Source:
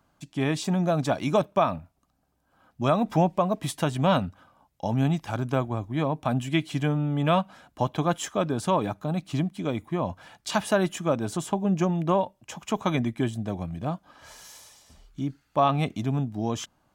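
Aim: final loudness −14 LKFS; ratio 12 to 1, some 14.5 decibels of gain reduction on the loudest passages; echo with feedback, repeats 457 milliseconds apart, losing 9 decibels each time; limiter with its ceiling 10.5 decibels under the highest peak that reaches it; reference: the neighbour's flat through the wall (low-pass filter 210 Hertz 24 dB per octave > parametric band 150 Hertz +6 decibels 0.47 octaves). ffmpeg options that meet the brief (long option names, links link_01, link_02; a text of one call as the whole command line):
ffmpeg -i in.wav -af "acompressor=threshold=-32dB:ratio=12,alimiter=level_in=5.5dB:limit=-24dB:level=0:latency=1,volume=-5.5dB,lowpass=frequency=210:width=0.5412,lowpass=frequency=210:width=1.3066,equalizer=frequency=150:width_type=o:width=0.47:gain=6,aecho=1:1:457|914|1371|1828:0.355|0.124|0.0435|0.0152,volume=26dB" out.wav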